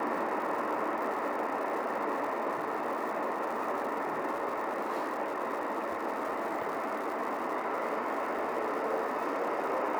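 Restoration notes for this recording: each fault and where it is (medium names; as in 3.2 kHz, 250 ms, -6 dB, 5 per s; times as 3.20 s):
crackle 290 per s -40 dBFS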